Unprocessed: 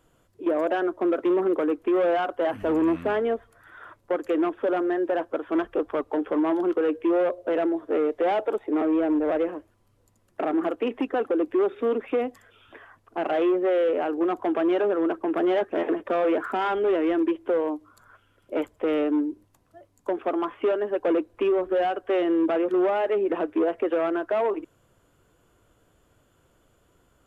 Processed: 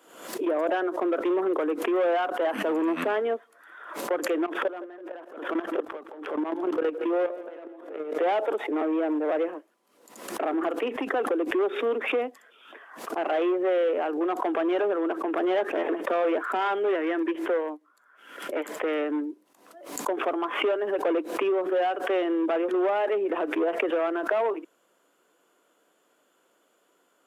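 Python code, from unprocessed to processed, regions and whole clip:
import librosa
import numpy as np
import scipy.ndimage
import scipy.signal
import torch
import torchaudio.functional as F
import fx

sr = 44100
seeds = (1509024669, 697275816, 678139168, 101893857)

y = fx.chain(x, sr, fx.level_steps(step_db=22),
    fx.transient(attack_db=1, sustain_db=9),
    fx.echo_feedback(ms=166, feedback_pct=52, wet_db=-16.5), at=(4.46, 8.18))
y = fx.chain(y, sr, fx.peak_eq(hz=1800.0, db=7.0, octaves=0.57),
    fx.upward_expand(threshold_db=-38.0, expansion=1.5), at=(16.91, 19.22))
y = scipy.signal.sosfilt(scipy.signal.bessel(8, 370.0, 'highpass', norm='mag', fs=sr, output='sos'), y)
y = fx.pre_swell(y, sr, db_per_s=77.0)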